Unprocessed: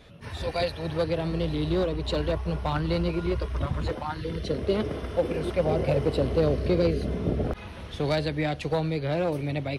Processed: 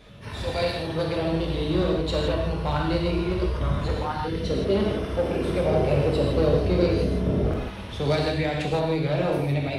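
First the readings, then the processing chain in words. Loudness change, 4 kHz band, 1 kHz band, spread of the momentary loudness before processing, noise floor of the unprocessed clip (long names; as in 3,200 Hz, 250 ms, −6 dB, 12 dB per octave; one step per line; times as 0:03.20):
+3.0 dB, +3.5 dB, +3.5 dB, 7 LU, −41 dBFS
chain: in parallel at −5 dB: soft clipping −24 dBFS, distortion −11 dB
on the sum: reverb whose tail is shaped and stops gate 190 ms flat, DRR −1.5 dB
level −3.5 dB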